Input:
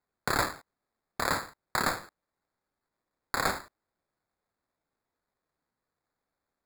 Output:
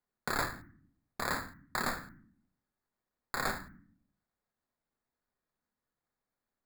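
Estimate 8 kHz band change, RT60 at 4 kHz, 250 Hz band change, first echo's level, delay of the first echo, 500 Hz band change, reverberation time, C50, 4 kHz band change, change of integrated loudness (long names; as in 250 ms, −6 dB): −6.0 dB, 0.40 s, −3.5 dB, no echo audible, no echo audible, −5.5 dB, 0.65 s, 15.5 dB, −6.0 dB, −5.0 dB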